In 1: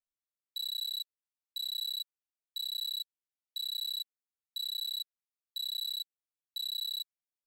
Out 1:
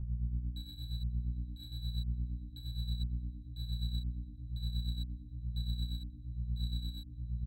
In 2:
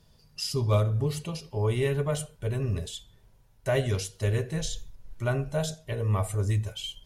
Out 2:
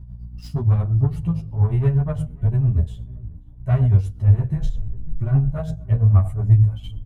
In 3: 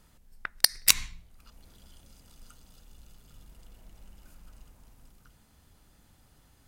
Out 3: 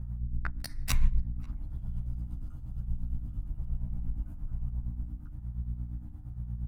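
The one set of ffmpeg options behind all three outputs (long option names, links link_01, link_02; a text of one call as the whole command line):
ffmpeg -i in.wav -filter_complex "[0:a]asplit=2[link_01][link_02];[link_02]adynamicsmooth=sensitivity=6:basefreq=2300,volume=3dB[link_03];[link_01][link_03]amix=inputs=2:normalize=0,tiltshelf=frequency=1300:gain=7.5,acontrast=81,aeval=exprs='val(0)+0.0355*(sin(2*PI*60*n/s)+sin(2*PI*2*60*n/s)/2+sin(2*PI*3*60*n/s)/3+sin(2*PI*4*60*n/s)/4+sin(2*PI*5*60*n/s)/5)':channel_layout=same,tremolo=f=8.6:d=0.67,firequalizer=gain_entry='entry(110,0);entry(260,-11);entry(460,-19);entry(720,-10);entry(4800,-13);entry(13000,-6)':delay=0.05:min_phase=1,asplit=2[link_04][link_05];[link_05]adelay=538,lowpass=frequency=1600:poles=1,volume=-23.5dB,asplit=2[link_06][link_07];[link_07]adelay=538,lowpass=frequency=1600:poles=1,volume=0.29[link_08];[link_06][link_08]amix=inputs=2:normalize=0[link_09];[link_04][link_09]amix=inputs=2:normalize=0,asplit=2[link_10][link_11];[link_11]adelay=11.8,afreqshift=-1.1[link_12];[link_10][link_12]amix=inputs=2:normalize=1" out.wav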